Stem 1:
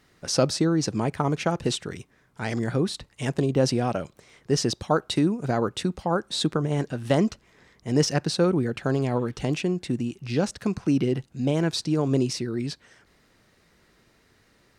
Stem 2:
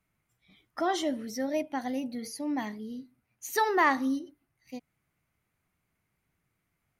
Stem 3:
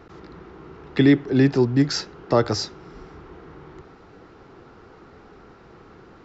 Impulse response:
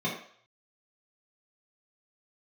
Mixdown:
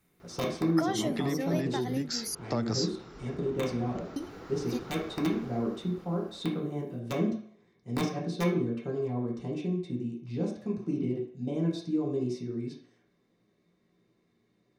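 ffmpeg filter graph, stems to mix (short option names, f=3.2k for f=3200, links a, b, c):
-filter_complex "[0:a]equalizer=f=330:t=o:w=0.8:g=9.5,aeval=exprs='(mod(2*val(0)+1,2)-1)/2':c=same,volume=-19.5dB,asplit=2[a][b];[b]volume=-4dB[c];[1:a]volume=2.5dB,asplit=3[d][e][f];[d]atrim=end=2.35,asetpts=PTS-STARTPTS,afade=t=out:st=2.346:d=0.004:c=hsin[g];[e]atrim=start=2.35:end=4.16,asetpts=PTS-STARTPTS,volume=0[h];[f]atrim=start=4.16,asetpts=PTS-STARTPTS,afade=t=in:d=0.004:c=hsin[i];[g][h][i]concat=n=3:v=0:a=1[j];[2:a]dynaudnorm=f=200:g=13:m=13dB,highshelf=f=8.6k:g=7,adelay=200,volume=-10dB[k];[j][k]amix=inputs=2:normalize=0,highshelf=f=6.2k:g=9.5,acompressor=threshold=-28dB:ratio=10,volume=0dB[l];[3:a]atrim=start_sample=2205[m];[c][m]afir=irnorm=-1:irlink=0[n];[a][l][n]amix=inputs=3:normalize=0"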